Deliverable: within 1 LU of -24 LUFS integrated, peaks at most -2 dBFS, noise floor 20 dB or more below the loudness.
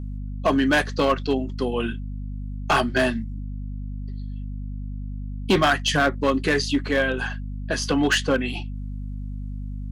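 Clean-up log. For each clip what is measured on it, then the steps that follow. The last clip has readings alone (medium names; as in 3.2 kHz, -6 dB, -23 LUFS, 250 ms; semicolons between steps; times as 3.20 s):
clipped samples 0.9%; clipping level -13.5 dBFS; hum 50 Hz; highest harmonic 250 Hz; hum level -29 dBFS; loudness -23.5 LUFS; peak level -13.5 dBFS; loudness target -24.0 LUFS
-> clip repair -13.5 dBFS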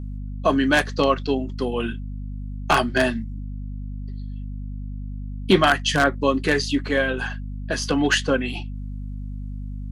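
clipped samples 0.0%; hum 50 Hz; highest harmonic 250 Hz; hum level -29 dBFS
-> de-hum 50 Hz, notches 5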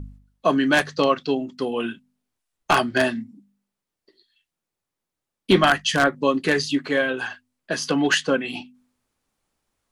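hum not found; loudness -22.0 LUFS; peak level -4.0 dBFS; loudness target -24.0 LUFS
-> trim -2 dB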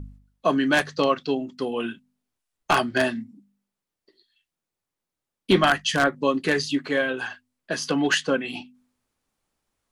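loudness -24.0 LUFS; peak level -6.0 dBFS; noise floor -87 dBFS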